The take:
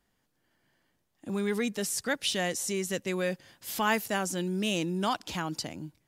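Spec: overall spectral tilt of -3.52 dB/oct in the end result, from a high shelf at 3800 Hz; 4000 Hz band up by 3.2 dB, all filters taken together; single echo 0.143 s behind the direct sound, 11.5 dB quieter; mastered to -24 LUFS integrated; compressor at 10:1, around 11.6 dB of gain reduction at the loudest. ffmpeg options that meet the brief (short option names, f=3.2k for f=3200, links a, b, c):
-af "highshelf=f=3.8k:g=-6.5,equalizer=f=4k:t=o:g=8.5,acompressor=threshold=-33dB:ratio=10,aecho=1:1:143:0.266,volume=13dB"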